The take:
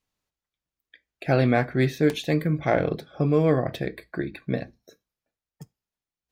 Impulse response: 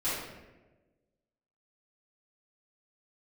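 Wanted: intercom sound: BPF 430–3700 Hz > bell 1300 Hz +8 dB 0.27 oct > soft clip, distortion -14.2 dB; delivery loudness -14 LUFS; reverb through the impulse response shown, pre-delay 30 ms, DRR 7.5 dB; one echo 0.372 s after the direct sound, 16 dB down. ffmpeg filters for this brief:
-filter_complex "[0:a]aecho=1:1:372:0.158,asplit=2[a][b];[1:a]atrim=start_sample=2205,adelay=30[c];[b][c]afir=irnorm=-1:irlink=0,volume=-15.5dB[d];[a][d]amix=inputs=2:normalize=0,highpass=430,lowpass=3.7k,equalizer=f=1.3k:t=o:w=0.27:g=8,asoftclip=threshold=-17dB,volume=15dB"

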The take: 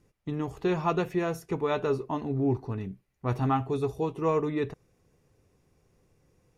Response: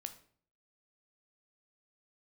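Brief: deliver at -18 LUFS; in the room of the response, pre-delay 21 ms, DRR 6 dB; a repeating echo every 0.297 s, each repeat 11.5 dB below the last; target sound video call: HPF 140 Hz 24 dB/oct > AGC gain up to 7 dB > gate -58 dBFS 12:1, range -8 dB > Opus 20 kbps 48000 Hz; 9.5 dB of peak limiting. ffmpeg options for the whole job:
-filter_complex "[0:a]alimiter=limit=-24dB:level=0:latency=1,aecho=1:1:297|594|891:0.266|0.0718|0.0194,asplit=2[a][b];[1:a]atrim=start_sample=2205,adelay=21[c];[b][c]afir=irnorm=-1:irlink=0,volume=-2.5dB[d];[a][d]amix=inputs=2:normalize=0,highpass=f=140:w=0.5412,highpass=f=140:w=1.3066,dynaudnorm=m=7dB,agate=range=-8dB:threshold=-58dB:ratio=12,volume=16dB" -ar 48000 -c:a libopus -b:a 20k

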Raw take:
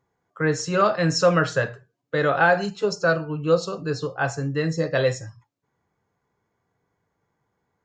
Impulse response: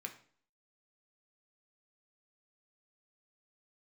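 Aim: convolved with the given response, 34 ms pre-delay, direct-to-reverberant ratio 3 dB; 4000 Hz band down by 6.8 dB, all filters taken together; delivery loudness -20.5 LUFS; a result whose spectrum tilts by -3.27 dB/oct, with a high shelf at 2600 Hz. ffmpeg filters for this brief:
-filter_complex "[0:a]highshelf=f=2.6k:g=-4,equalizer=f=4k:t=o:g=-5.5,asplit=2[a][b];[1:a]atrim=start_sample=2205,adelay=34[c];[b][c]afir=irnorm=-1:irlink=0,volume=-1dB[d];[a][d]amix=inputs=2:normalize=0,volume=1.5dB"

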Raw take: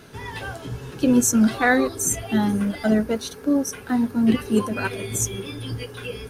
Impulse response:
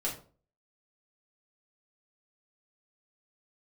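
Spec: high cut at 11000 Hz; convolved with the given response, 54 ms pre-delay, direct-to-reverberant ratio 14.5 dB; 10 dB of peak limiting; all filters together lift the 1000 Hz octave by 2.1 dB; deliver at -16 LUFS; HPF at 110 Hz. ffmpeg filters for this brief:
-filter_complex "[0:a]highpass=110,lowpass=11k,equalizer=f=1k:t=o:g=3,alimiter=limit=-16dB:level=0:latency=1,asplit=2[a][b];[1:a]atrim=start_sample=2205,adelay=54[c];[b][c]afir=irnorm=-1:irlink=0,volume=-18.5dB[d];[a][d]amix=inputs=2:normalize=0,volume=10dB"

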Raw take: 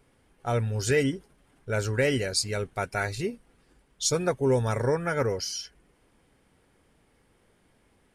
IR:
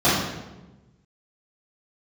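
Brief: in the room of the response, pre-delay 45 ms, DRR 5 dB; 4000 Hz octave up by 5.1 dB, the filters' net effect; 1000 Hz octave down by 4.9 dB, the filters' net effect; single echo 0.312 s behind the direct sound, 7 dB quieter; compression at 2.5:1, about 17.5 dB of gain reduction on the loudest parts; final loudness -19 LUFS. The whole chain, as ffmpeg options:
-filter_complex "[0:a]equalizer=f=1k:t=o:g=-8,equalizer=f=4k:t=o:g=7,acompressor=threshold=-46dB:ratio=2.5,aecho=1:1:312:0.447,asplit=2[a][b];[1:a]atrim=start_sample=2205,adelay=45[c];[b][c]afir=irnorm=-1:irlink=0,volume=-26.5dB[d];[a][d]amix=inputs=2:normalize=0,volume=21dB"

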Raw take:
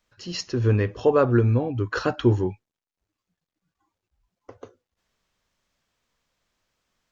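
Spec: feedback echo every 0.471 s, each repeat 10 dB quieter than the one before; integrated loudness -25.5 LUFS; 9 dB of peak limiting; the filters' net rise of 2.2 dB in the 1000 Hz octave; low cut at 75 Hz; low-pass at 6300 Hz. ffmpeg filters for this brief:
-af "highpass=75,lowpass=6.3k,equalizer=f=1k:t=o:g=3,alimiter=limit=-14.5dB:level=0:latency=1,aecho=1:1:471|942|1413|1884:0.316|0.101|0.0324|0.0104,volume=0.5dB"

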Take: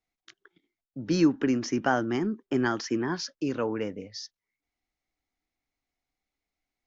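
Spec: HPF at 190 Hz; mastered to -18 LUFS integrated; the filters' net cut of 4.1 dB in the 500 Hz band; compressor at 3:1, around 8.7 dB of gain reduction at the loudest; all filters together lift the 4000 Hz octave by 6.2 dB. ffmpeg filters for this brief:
-af "highpass=190,equalizer=f=500:t=o:g=-6,equalizer=f=4k:t=o:g=8.5,acompressor=threshold=-31dB:ratio=3,volume=16.5dB"

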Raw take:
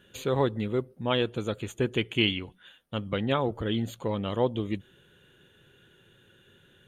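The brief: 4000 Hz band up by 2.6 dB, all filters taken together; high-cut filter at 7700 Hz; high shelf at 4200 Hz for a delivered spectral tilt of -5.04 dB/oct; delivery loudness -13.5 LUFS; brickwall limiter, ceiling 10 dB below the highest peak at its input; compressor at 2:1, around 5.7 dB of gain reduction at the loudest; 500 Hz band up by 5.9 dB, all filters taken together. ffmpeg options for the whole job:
-af "lowpass=7.7k,equalizer=f=500:t=o:g=7,equalizer=f=4k:t=o:g=6,highshelf=f=4.2k:g=-4,acompressor=threshold=-25dB:ratio=2,volume=20dB,alimiter=limit=-1.5dB:level=0:latency=1"

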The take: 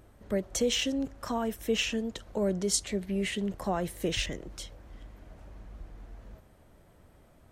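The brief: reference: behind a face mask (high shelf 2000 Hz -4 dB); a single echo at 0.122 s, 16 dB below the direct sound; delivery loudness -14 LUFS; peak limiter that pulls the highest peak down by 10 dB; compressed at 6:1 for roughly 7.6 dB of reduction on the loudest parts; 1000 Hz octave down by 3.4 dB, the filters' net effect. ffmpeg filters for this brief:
-af "equalizer=f=1k:t=o:g=-4,acompressor=threshold=-31dB:ratio=6,alimiter=level_in=6.5dB:limit=-24dB:level=0:latency=1,volume=-6.5dB,highshelf=f=2k:g=-4,aecho=1:1:122:0.158,volume=27.5dB"

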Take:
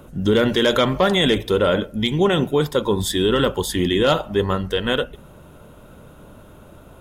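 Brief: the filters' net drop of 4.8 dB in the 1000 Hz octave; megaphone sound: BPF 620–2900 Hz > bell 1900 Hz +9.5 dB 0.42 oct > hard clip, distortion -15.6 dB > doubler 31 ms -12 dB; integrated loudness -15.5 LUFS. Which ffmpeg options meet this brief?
-filter_complex "[0:a]highpass=620,lowpass=2.9k,equalizer=f=1k:t=o:g=-7.5,equalizer=f=1.9k:t=o:w=0.42:g=9.5,asoftclip=type=hard:threshold=-16dB,asplit=2[a][b];[b]adelay=31,volume=-12dB[c];[a][c]amix=inputs=2:normalize=0,volume=10dB"

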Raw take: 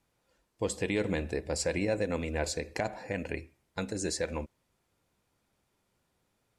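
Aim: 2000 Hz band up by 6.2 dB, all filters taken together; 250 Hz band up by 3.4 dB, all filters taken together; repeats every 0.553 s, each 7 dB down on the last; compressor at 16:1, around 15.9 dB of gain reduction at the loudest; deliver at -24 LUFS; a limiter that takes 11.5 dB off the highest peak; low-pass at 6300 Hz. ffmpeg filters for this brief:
-af "lowpass=6.3k,equalizer=f=250:t=o:g=4.5,equalizer=f=2k:t=o:g=7.5,acompressor=threshold=-39dB:ratio=16,alimiter=level_in=9dB:limit=-24dB:level=0:latency=1,volume=-9dB,aecho=1:1:553|1106|1659|2212|2765:0.447|0.201|0.0905|0.0407|0.0183,volume=22.5dB"

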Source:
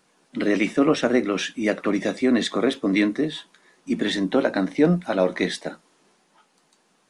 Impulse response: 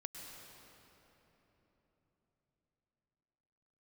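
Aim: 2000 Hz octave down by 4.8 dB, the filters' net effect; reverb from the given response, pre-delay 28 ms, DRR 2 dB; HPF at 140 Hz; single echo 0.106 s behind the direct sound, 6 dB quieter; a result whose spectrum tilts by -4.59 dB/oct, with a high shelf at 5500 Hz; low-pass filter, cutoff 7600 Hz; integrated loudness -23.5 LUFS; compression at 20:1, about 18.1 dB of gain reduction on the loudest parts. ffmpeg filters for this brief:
-filter_complex "[0:a]highpass=140,lowpass=7.6k,equalizer=f=2k:t=o:g=-5,highshelf=f=5.5k:g=-6.5,acompressor=threshold=-32dB:ratio=20,aecho=1:1:106:0.501,asplit=2[a][b];[1:a]atrim=start_sample=2205,adelay=28[c];[b][c]afir=irnorm=-1:irlink=0,volume=0.5dB[d];[a][d]amix=inputs=2:normalize=0,volume=11dB"

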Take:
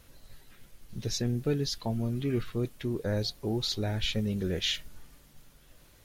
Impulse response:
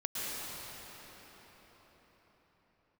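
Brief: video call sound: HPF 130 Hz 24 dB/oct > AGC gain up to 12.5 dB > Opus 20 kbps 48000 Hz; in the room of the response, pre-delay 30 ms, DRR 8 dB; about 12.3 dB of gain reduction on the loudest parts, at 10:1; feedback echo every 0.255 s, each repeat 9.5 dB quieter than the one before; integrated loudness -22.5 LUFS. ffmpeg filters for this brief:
-filter_complex "[0:a]acompressor=threshold=-37dB:ratio=10,aecho=1:1:255|510|765|1020:0.335|0.111|0.0365|0.012,asplit=2[a][b];[1:a]atrim=start_sample=2205,adelay=30[c];[b][c]afir=irnorm=-1:irlink=0,volume=-13.5dB[d];[a][d]amix=inputs=2:normalize=0,highpass=f=130:w=0.5412,highpass=f=130:w=1.3066,dynaudnorm=m=12.5dB,volume=19.5dB" -ar 48000 -c:a libopus -b:a 20k

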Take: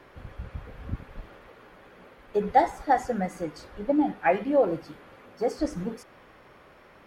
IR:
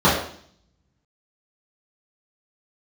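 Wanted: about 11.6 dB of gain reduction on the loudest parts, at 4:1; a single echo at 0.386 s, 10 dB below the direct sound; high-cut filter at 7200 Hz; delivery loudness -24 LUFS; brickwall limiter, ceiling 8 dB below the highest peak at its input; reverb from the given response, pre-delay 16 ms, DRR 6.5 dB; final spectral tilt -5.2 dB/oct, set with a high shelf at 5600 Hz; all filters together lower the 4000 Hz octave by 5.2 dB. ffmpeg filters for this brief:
-filter_complex "[0:a]lowpass=7.2k,equalizer=f=4k:t=o:g=-5,highshelf=f=5.6k:g=-3,acompressor=threshold=-28dB:ratio=4,alimiter=level_in=2dB:limit=-24dB:level=0:latency=1,volume=-2dB,aecho=1:1:386:0.316,asplit=2[a][b];[1:a]atrim=start_sample=2205,adelay=16[c];[b][c]afir=irnorm=-1:irlink=0,volume=-30dB[d];[a][d]amix=inputs=2:normalize=0,volume=12dB"

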